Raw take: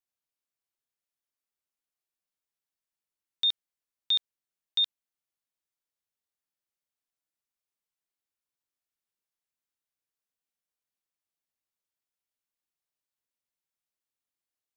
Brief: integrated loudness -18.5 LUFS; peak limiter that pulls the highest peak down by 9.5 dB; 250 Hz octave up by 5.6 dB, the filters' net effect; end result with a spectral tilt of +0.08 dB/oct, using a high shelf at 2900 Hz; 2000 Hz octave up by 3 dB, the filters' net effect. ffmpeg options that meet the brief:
-af "equalizer=f=250:t=o:g=7,equalizer=f=2k:t=o:g=7.5,highshelf=f=2.9k:g=-8.5,volume=20dB,alimiter=limit=-10.5dB:level=0:latency=1"

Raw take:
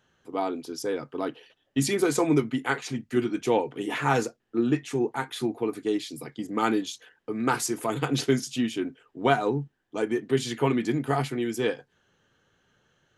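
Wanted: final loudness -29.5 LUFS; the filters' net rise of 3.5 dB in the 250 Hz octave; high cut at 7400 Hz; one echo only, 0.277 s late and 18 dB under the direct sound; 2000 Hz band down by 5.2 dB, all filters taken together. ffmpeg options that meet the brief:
-af "lowpass=7.4k,equalizer=f=250:t=o:g=4.5,equalizer=f=2k:t=o:g=-7.5,aecho=1:1:277:0.126,volume=-3.5dB"

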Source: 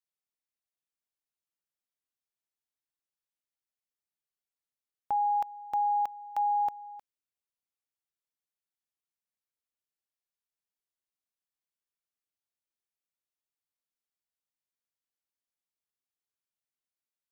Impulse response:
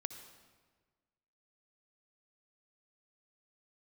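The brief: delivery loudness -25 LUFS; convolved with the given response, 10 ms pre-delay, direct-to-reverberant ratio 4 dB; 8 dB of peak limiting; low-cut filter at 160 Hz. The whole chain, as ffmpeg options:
-filter_complex "[0:a]highpass=160,alimiter=level_in=7dB:limit=-24dB:level=0:latency=1,volume=-7dB,asplit=2[a][b];[1:a]atrim=start_sample=2205,adelay=10[c];[b][c]afir=irnorm=-1:irlink=0,volume=-2.5dB[d];[a][d]amix=inputs=2:normalize=0,volume=10.5dB"

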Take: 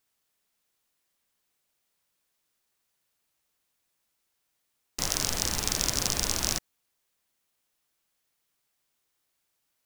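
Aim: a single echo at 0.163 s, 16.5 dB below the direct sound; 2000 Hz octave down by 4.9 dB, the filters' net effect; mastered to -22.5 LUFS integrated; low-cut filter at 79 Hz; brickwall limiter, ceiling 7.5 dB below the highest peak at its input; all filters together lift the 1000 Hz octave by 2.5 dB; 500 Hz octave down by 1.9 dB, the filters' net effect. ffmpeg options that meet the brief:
-af "highpass=79,equalizer=f=500:t=o:g=-4,equalizer=f=1k:t=o:g=6.5,equalizer=f=2k:t=o:g=-8.5,alimiter=limit=-12dB:level=0:latency=1,aecho=1:1:163:0.15,volume=9dB"

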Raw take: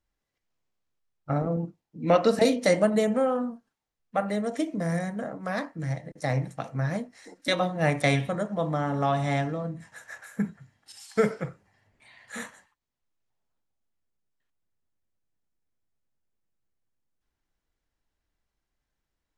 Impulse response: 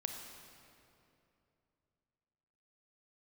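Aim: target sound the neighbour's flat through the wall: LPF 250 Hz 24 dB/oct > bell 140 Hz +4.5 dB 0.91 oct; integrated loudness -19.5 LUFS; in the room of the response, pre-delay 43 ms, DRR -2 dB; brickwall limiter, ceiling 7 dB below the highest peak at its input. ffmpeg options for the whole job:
-filter_complex "[0:a]alimiter=limit=-16dB:level=0:latency=1,asplit=2[a][b];[1:a]atrim=start_sample=2205,adelay=43[c];[b][c]afir=irnorm=-1:irlink=0,volume=2dB[d];[a][d]amix=inputs=2:normalize=0,lowpass=f=250:w=0.5412,lowpass=f=250:w=1.3066,equalizer=f=140:t=o:w=0.91:g=4.5,volume=7dB"

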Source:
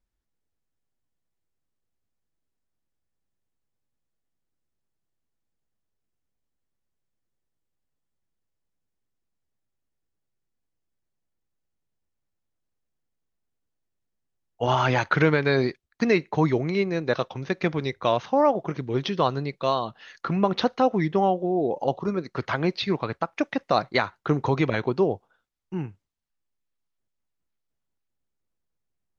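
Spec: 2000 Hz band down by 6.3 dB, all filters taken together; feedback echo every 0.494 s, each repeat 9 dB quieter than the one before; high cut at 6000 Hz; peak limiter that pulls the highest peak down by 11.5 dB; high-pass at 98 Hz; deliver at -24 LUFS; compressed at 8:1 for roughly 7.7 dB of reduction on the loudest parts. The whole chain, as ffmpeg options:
-af "highpass=98,lowpass=6k,equalizer=f=2k:t=o:g=-8.5,acompressor=threshold=-24dB:ratio=8,alimiter=limit=-24dB:level=0:latency=1,aecho=1:1:494|988|1482|1976:0.355|0.124|0.0435|0.0152,volume=10.5dB"

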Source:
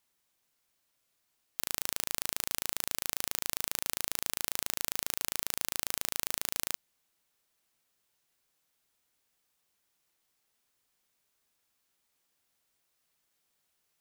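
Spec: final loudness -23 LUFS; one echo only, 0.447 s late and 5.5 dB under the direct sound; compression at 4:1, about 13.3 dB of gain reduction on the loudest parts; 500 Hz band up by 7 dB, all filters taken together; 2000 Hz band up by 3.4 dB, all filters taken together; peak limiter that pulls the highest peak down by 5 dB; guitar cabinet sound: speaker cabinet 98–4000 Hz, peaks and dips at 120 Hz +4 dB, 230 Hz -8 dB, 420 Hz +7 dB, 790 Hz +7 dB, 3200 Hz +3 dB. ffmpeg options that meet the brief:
-af "equalizer=f=500:t=o:g=4,equalizer=f=2k:t=o:g=3.5,acompressor=threshold=-41dB:ratio=4,alimiter=limit=-19dB:level=0:latency=1,highpass=98,equalizer=f=120:t=q:w=4:g=4,equalizer=f=230:t=q:w=4:g=-8,equalizer=f=420:t=q:w=4:g=7,equalizer=f=790:t=q:w=4:g=7,equalizer=f=3.2k:t=q:w=4:g=3,lowpass=f=4k:w=0.5412,lowpass=f=4k:w=1.3066,aecho=1:1:447:0.531,volume=30dB"

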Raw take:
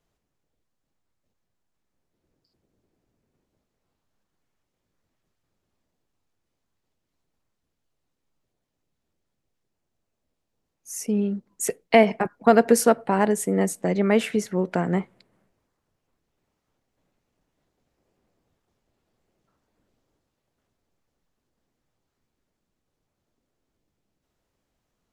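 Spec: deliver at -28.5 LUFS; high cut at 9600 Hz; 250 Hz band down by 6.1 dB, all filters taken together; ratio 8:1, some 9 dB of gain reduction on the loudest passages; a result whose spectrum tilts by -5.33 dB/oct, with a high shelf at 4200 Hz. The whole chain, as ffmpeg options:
-af "lowpass=9.6k,equalizer=f=250:t=o:g=-8,highshelf=f=4.2k:g=-8.5,acompressor=threshold=-21dB:ratio=8,volume=1dB"

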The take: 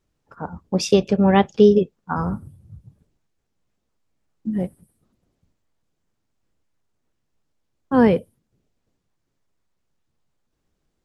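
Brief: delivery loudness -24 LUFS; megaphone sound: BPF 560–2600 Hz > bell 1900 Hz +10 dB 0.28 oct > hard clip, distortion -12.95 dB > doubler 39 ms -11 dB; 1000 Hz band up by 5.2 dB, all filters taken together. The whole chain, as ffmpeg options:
-filter_complex "[0:a]highpass=560,lowpass=2.6k,equalizer=f=1k:t=o:g=7.5,equalizer=f=1.9k:t=o:w=0.28:g=10,asoftclip=type=hard:threshold=-12dB,asplit=2[a][b];[b]adelay=39,volume=-11dB[c];[a][c]amix=inputs=2:normalize=0,volume=-1dB"

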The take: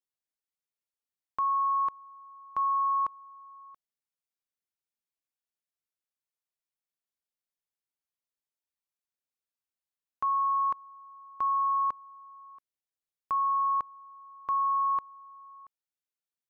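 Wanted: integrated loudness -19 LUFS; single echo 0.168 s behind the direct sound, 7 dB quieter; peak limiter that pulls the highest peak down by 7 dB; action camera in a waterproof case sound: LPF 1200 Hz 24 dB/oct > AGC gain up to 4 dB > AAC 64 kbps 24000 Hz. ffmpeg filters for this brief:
-af "alimiter=level_in=6.5dB:limit=-24dB:level=0:latency=1,volume=-6.5dB,lowpass=f=1.2k:w=0.5412,lowpass=f=1.2k:w=1.3066,aecho=1:1:168:0.447,dynaudnorm=m=4dB,volume=18dB" -ar 24000 -c:a aac -b:a 64k

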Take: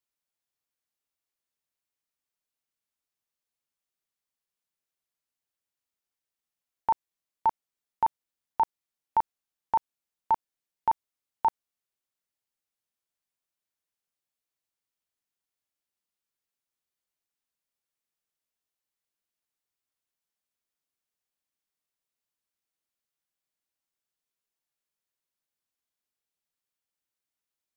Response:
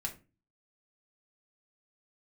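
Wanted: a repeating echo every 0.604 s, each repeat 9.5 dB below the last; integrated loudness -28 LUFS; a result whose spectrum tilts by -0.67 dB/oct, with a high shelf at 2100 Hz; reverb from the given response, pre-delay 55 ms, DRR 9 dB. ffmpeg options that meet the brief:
-filter_complex "[0:a]highshelf=f=2.1k:g=-8,aecho=1:1:604|1208|1812|2416:0.335|0.111|0.0365|0.012,asplit=2[a][b];[1:a]atrim=start_sample=2205,adelay=55[c];[b][c]afir=irnorm=-1:irlink=0,volume=-9.5dB[d];[a][d]amix=inputs=2:normalize=0,volume=3.5dB"

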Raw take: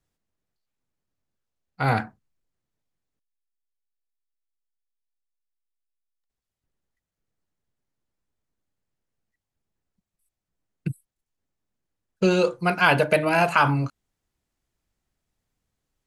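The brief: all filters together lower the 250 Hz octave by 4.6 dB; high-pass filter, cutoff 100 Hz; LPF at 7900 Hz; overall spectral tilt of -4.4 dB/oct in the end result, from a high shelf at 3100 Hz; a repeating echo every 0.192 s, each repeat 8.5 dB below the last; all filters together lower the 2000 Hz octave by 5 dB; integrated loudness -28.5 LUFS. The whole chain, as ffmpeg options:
-af "highpass=100,lowpass=7.9k,equalizer=f=250:t=o:g=-7.5,equalizer=f=2k:t=o:g=-6,highshelf=f=3.1k:g=-3.5,aecho=1:1:192|384|576|768:0.376|0.143|0.0543|0.0206,volume=-4dB"

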